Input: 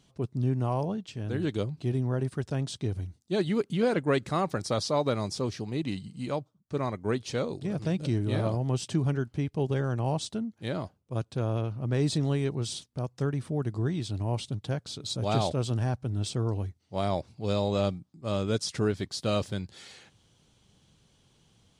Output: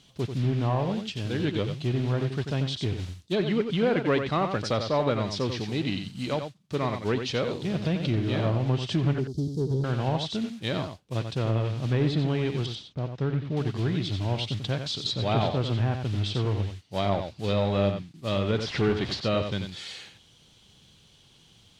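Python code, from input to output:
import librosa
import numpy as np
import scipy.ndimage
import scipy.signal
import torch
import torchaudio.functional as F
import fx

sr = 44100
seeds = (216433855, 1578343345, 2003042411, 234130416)

p1 = fx.zero_step(x, sr, step_db=-34.0, at=(18.58, 19.2))
p2 = fx.mod_noise(p1, sr, seeds[0], snr_db=18)
p3 = fx.ellip_bandstop(p2, sr, low_hz=420.0, high_hz=4700.0, order=3, stop_db=40, at=(9.18, 9.84))
p4 = fx.spacing_loss(p3, sr, db_at_10k=27, at=(12.66, 13.57))
p5 = 10.0 ** (-26.5 / 20.0) * np.tanh(p4 / 10.0 ** (-26.5 / 20.0))
p6 = p4 + (p5 * librosa.db_to_amplitude(-4.0))
p7 = fx.peak_eq(p6, sr, hz=3400.0, db=8.5, octaves=1.4)
p8 = p7 + fx.echo_single(p7, sr, ms=90, db=-7.5, dry=0)
p9 = fx.env_lowpass_down(p8, sr, base_hz=2200.0, full_db=-19.5)
y = p9 * librosa.db_to_amplitude(-1.5)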